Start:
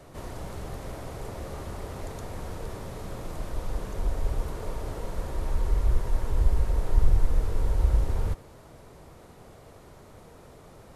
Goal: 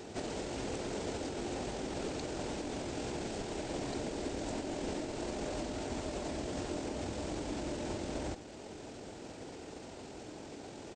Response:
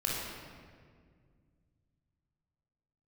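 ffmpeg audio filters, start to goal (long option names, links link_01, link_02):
-af "afftfilt=real='re*lt(hypot(re,im),0.562)':imag='im*lt(hypot(re,im),0.562)':win_size=1024:overlap=0.75,highpass=frequency=490:poles=1,equalizer=frequency=1800:width=3.8:gain=-7,alimiter=level_in=11.5dB:limit=-24dB:level=0:latency=1:release=355,volume=-11.5dB,asetrate=28595,aresample=44100,atempo=1.54221,volume=8dB"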